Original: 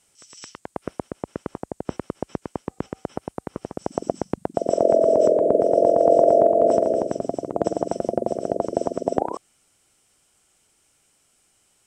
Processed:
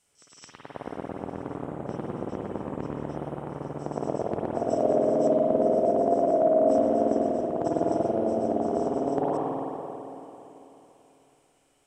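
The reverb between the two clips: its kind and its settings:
spring reverb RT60 3.3 s, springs 48/55 ms, chirp 70 ms, DRR −5.5 dB
level −8 dB

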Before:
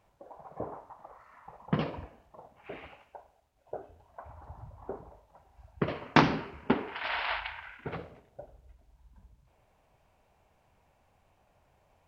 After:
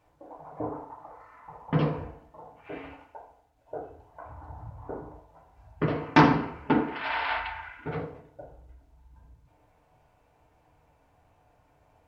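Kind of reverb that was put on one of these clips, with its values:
feedback delay network reverb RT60 0.53 s, low-frequency decay 1×, high-frequency decay 0.25×, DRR −2 dB
level −1 dB

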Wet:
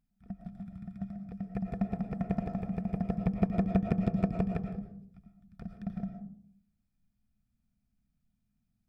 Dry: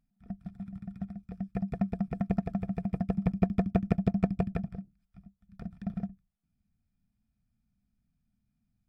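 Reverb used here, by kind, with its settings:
comb and all-pass reverb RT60 0.62 s, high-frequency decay 0.3×, pre-delay 70 ms, DRR 6 dB
level −2 dB

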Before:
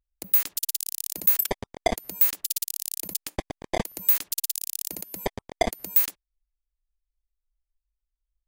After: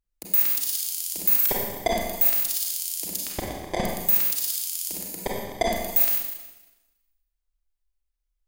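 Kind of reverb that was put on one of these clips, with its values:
four-comb reverb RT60 1.1 s, combs from 31 ms, DRR −2.5 dB
level −2 dB

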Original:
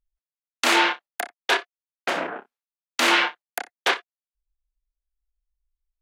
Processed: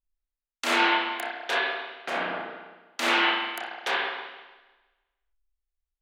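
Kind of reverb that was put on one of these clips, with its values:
spring reverb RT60 1.2 s, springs 33/50 ms, chirp 20 ms, DRR −5.5 dB
level −9 dB

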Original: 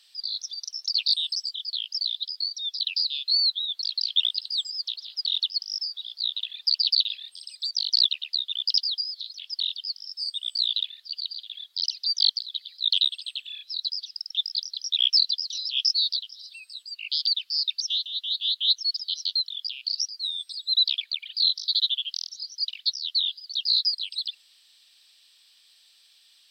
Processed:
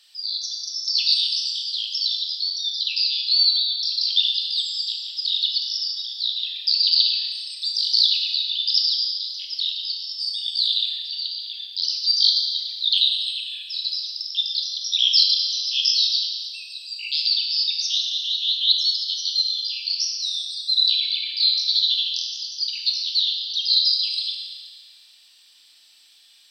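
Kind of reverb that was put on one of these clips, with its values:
feedback delay network reverb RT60 1.9 s, low-frequency decay 1.55×, high-frequency decay 0.9×, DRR −1 dB
level +1.5 dB

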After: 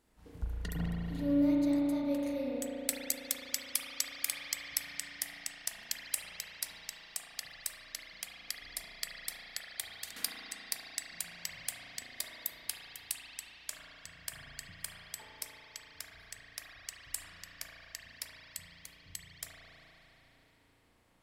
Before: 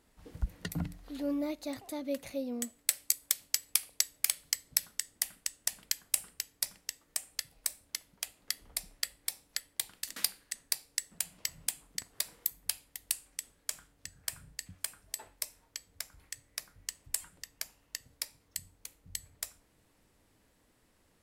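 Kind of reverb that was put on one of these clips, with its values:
spring reverb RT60 3.7 s, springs 35 ms, chirp 40 ms, DRR −4.5 dB
level −5 dB

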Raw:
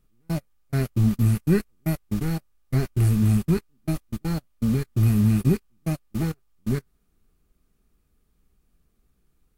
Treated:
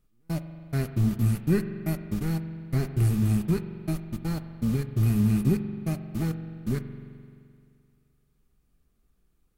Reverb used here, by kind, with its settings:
spring reverb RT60 2.3 s, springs 43 ms, chirp 55 ms, DRR 9 dB
level −3.5 dB

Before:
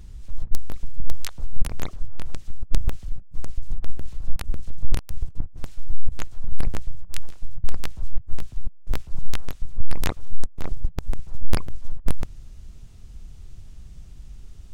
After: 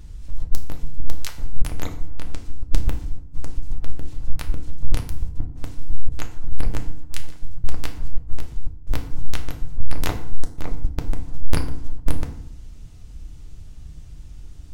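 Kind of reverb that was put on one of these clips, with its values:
feedback delay network reverb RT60 0.65 s, low-frequency decay 1.55×, high-frequency decay 0.7×, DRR 4 dB
level +1 dB

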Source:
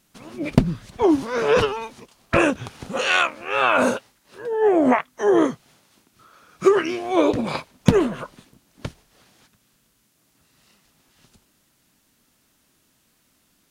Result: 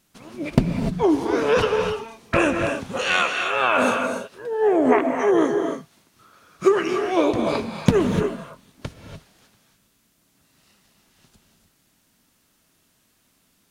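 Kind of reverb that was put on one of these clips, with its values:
reverb whose tail is shaped and stops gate 320 ms rising, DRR 4 dB
level −1.5 dB

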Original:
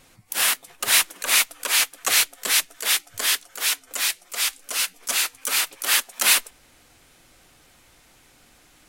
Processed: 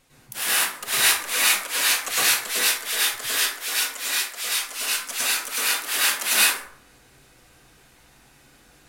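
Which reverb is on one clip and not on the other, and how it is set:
dense smooth reverb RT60 0.59 s, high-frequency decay 0.55×, pre-delay 90 ms, DRR −9 dB
level −8 dB

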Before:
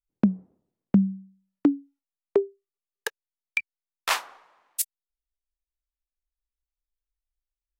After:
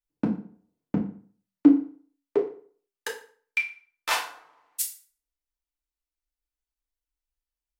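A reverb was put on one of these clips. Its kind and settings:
feedback delay network reverb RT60 0.46 s, low-frequency decay 1×, high-frequency decay 0.8×, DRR −3.5 dB
level −5 dB

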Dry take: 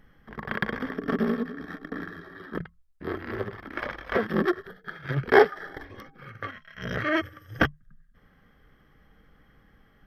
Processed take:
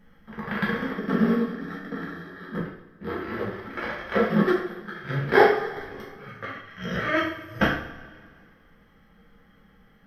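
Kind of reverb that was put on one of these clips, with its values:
coupled-rooms reverb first 0.54 s, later 2 s, from −17 dB, DRR −5.5 dB
level −4 dB

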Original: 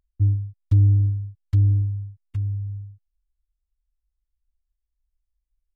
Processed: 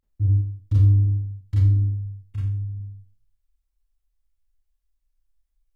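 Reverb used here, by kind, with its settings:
four-comb reverb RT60 0.48 s, combs from 28 ms, DRR −8 dB
level −4.5 dB

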